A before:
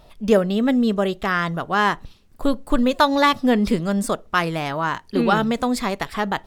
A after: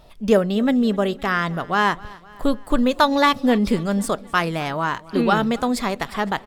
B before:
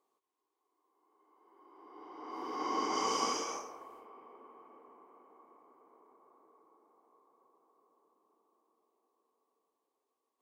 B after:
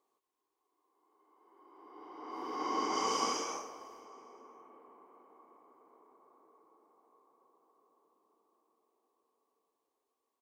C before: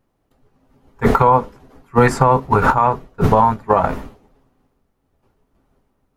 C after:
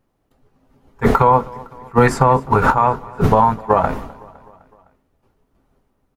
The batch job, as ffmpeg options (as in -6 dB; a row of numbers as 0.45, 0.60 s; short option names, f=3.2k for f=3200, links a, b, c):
-af "aecho=1:1:255|510|765|1020:0.0794|0.0453|0.0258|0.0147"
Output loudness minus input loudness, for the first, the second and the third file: 0.0, 0.0, 0.0 LU